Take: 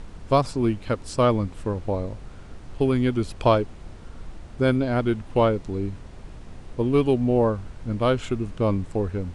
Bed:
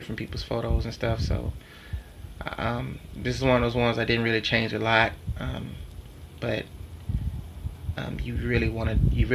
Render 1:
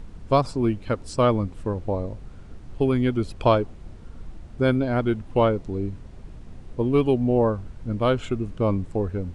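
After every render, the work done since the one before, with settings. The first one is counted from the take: denoiser 6 dB, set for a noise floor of -42 dBFS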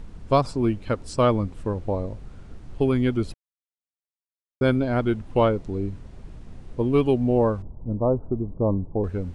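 3.34–4.61 mute; 7.62–9.04 steep low-pass 1000 Hz 48 dB/oct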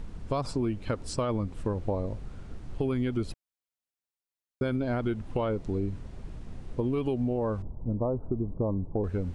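limiter -15.5 dBFS, peak gain reduction 8 dB; compressor, threshold -25 dBFS, peak gain reduction 6 dB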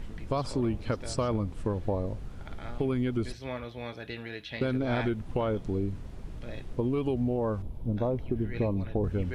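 add bed -15.5 dB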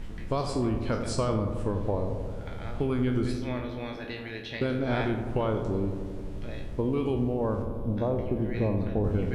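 spectral trails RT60 0.38 s; on a send: darkening echo 88 ms, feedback 81%, low-pass 1900 Hz, level -8.5 dB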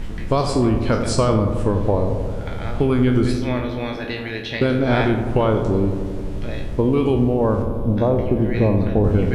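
gain +10 dB

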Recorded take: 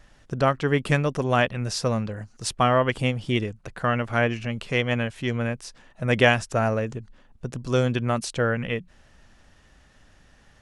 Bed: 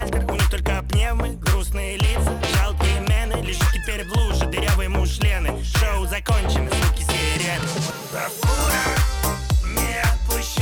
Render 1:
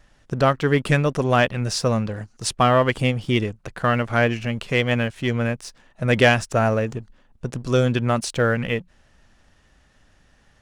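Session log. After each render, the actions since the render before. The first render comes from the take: sample leveller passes 1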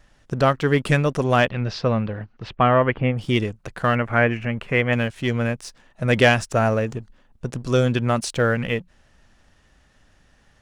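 1.45–3.17 LPF 4700 Hz -> 2200 Hz 24 dB/oct; 3.95–4.93 resonant high shelf 3000 Hz -10.5 dB, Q 1.5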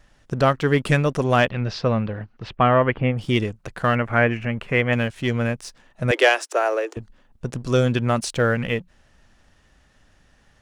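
6.11–6.97 steep high-pass 300 Hz 96 dB/oct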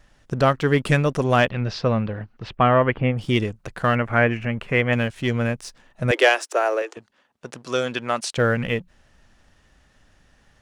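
6.82–8.38 weighting filter A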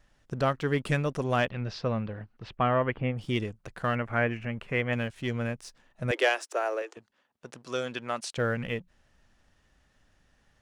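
gain -8.5 dB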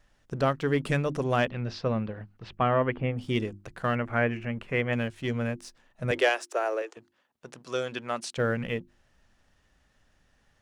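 notches 50/100/150/200/250/300/350 Hz; dynamic EQ 290 Hz, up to +3 dB, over -37 dBFS, Q 0.73

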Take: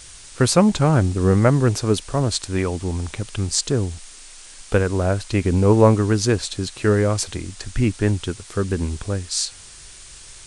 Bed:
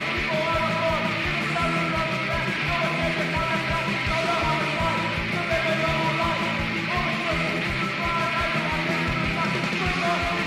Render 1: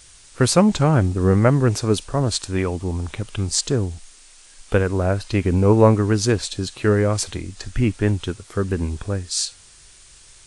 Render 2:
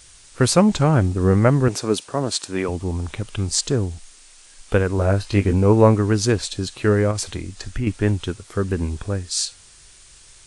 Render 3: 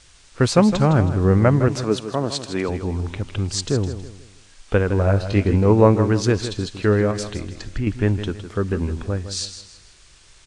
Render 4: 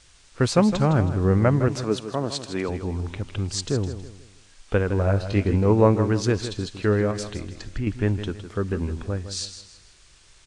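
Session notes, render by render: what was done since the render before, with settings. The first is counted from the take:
noise print and reduce 6 dB
1.68–2.69 HPF 190 Hz; 4.96–5.53 doubler 20 ms -6 dB; 7.11–7.87 compressor 3:1, threshold -21 dBFS
air absorption 73 m; feedback echo 0.16 s, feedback 36%, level -11 dB
gain -3.5 dB

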